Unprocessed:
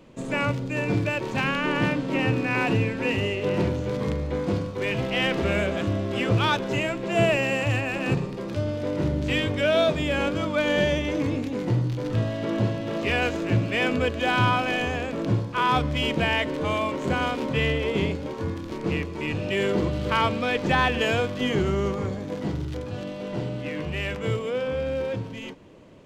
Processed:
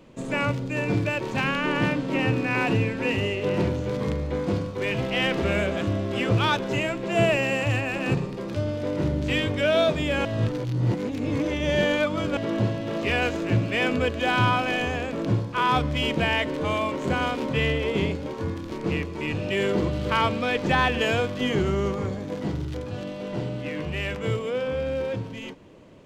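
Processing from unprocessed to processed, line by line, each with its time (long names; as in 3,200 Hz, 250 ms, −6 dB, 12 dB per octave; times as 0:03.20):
0:10.25–0:12.37: reverse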